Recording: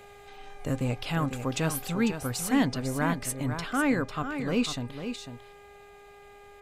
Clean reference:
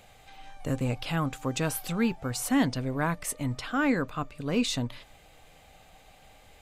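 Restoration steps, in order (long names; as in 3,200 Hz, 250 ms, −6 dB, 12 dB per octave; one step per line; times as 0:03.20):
hum removal 406.1 Hz, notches 6
echo removal 499 ms −8.5 dB
level correction +4 dB, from 0:04.66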